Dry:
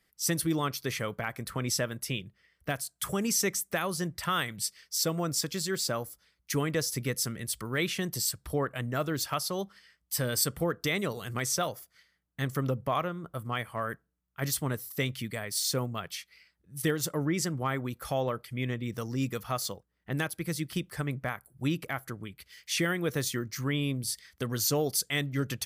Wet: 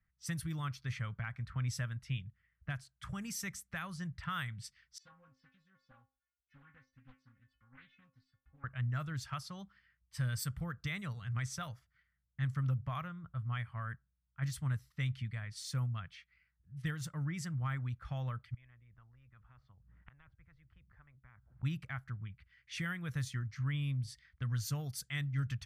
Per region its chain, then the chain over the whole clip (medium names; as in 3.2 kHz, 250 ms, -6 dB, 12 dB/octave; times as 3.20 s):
4.98–8.64 s: distance through air 97 m + inharmonic resonator 260 Hz, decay 0.36 s, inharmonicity 0.008 + loudspeaker Doppler distortion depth 0.61 ms
18.54–21.63 s: inverted gate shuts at -36 dBFS, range -32 dB + RIAA curve playback + spectrum-flattening compressor 10:1
whole clip: level-controlled noise filter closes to 1.7 kHz, open at -24.5 dBFS; FFT filter 120 Hz 0 dB, 390 Hz -28 dB, 1.5 kHz -9 dB, 4.5 kHz -16 dB; trim +2 dB